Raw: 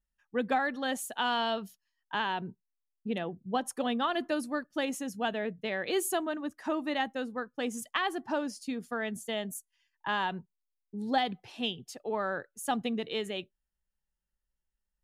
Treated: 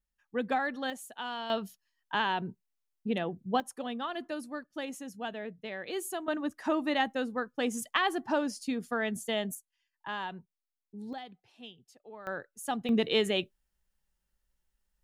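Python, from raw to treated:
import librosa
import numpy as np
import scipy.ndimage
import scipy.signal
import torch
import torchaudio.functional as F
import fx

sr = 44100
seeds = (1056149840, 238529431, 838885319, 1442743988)

y = fx.gain(x, sr, db=fx.steps((0.0, -1.5), (0.9, -8.0), (1.5, 2.0), (3.6, -6.0), (6.28, 2.5), (9.55, -6.0), (11.13, -15.0), (12.27, -2.5), (12.89, 7.0)))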